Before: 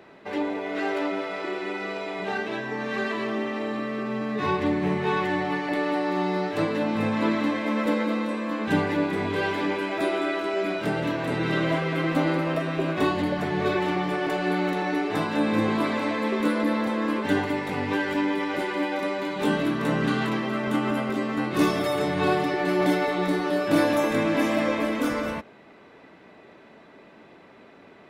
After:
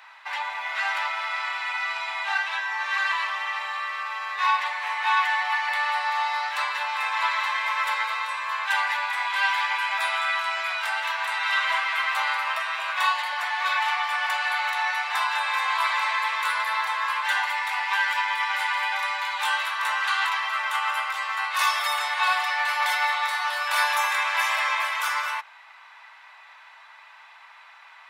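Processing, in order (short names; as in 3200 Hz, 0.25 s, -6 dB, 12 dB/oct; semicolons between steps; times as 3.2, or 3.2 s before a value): elliptic high-pass 900 Hz, stop band 70 dB; gain +7.5 dB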